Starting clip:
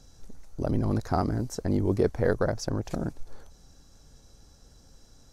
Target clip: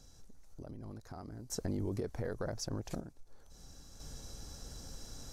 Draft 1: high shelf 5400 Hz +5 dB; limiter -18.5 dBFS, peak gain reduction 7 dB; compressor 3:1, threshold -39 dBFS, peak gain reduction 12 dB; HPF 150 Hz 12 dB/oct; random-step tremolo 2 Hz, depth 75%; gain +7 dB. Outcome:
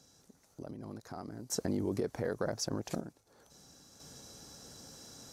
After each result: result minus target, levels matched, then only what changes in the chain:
125 Hz band -5.0 dB; compressor: peak gain reduction -4.5 dB
remove: HPF 150 Hz 12 dB/oct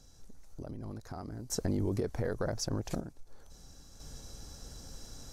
compressor: peak gain reduction -4.5 dB
change: compressor 3:1, threshold -46 dBFS, peak gain reduction 16.5 dB

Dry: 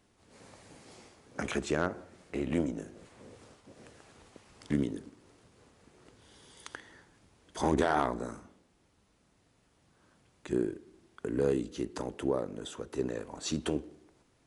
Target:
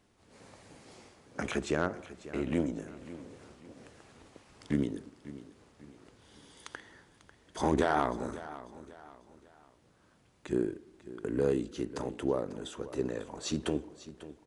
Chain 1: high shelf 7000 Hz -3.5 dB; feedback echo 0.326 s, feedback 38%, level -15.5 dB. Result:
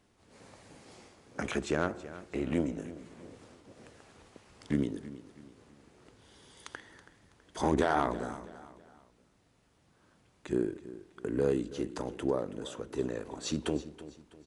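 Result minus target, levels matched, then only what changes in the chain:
echo 0.219 s early
change: feedback echo 0.545 s, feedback 38%, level -15.5 dB

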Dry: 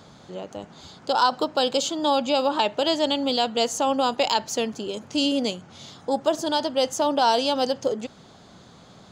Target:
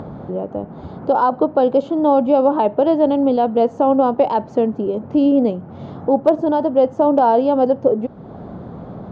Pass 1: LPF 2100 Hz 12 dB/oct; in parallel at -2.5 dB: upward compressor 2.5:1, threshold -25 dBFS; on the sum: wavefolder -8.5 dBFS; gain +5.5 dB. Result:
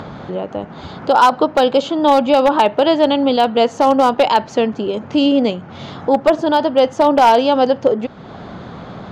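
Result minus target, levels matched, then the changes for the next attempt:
2000 Hz band +11.0 dB
change: LPF 710 Hz 12 dB/oct

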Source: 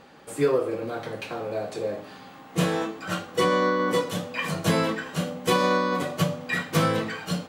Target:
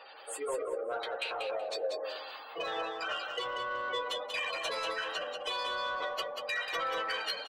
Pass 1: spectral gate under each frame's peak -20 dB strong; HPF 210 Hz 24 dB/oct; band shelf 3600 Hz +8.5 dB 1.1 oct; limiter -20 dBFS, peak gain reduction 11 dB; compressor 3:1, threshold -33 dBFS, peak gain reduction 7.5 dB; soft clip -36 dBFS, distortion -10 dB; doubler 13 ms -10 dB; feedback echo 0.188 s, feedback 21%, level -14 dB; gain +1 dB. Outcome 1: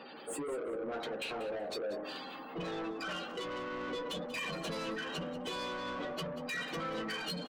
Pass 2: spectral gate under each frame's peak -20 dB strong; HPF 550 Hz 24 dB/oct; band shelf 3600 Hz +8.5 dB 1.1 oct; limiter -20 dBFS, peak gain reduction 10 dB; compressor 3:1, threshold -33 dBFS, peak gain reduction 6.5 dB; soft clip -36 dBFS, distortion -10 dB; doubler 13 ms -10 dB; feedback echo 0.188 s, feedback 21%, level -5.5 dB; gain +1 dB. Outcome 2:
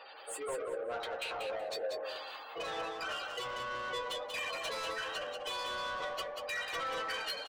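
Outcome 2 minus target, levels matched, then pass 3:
soft clip: distortion +8 dB
spectral gate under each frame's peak -20 dB strong; HPF 550 Hz 24 dB/oct; band shelf 3600 Hz +8.5 dB 1.1 oct; limiter -20 dBFS, peak gain reduction 10 dB; compressor 3:1, threshold -33 dBFS, peak gain reduction 6.5 dB; soft clip -28.5 dBFS, distortion -19 dB; doubler 13 ms -10 dB; feedback echo 0.188 s, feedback 21%, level -5.5 dB; gain +1 dB

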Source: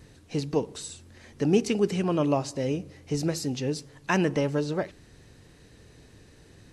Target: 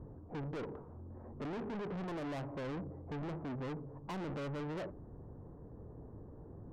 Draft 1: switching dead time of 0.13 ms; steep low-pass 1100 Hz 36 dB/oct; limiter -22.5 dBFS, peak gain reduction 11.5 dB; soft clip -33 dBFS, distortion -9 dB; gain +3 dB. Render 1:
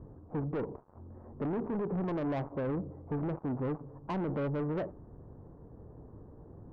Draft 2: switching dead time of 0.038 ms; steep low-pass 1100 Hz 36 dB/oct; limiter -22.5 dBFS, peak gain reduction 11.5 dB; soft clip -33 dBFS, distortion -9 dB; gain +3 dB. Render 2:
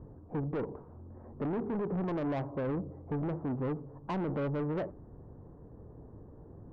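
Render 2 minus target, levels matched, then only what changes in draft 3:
soft clip: distortion -5 dB
change: soft clip -42 dBFS, distortion -4 dB

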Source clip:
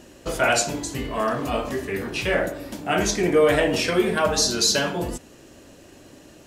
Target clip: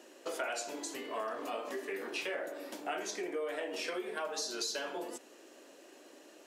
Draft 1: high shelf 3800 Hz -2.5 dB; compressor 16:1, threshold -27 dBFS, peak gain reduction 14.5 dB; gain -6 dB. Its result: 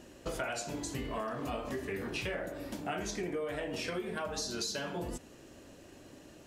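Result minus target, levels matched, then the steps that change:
250 Hz band +4.5 dB
add after compressor: HPF 320 Hz 24 dB/oct

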